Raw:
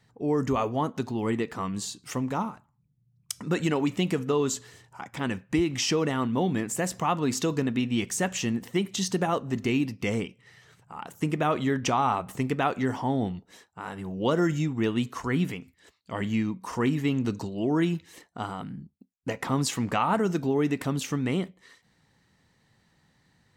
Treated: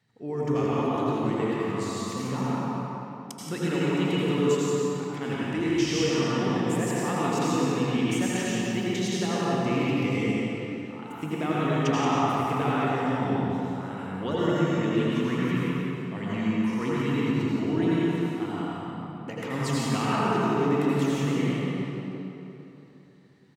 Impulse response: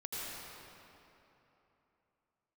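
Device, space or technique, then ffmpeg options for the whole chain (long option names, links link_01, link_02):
PA in a hall: -filter_complex "[0:a]highpass=120,equalizer=frequency=2600:width_type=o:width=1.7:gain=4,aecho=1:1:176:0.447[link_01];[1:a]atrim=start_sample=2205[link_02];[link_01][link_02]afir=irnorm=-1:irlink=0,lowshelf=frequency=390:gain=5.5,volume=-4.5dB"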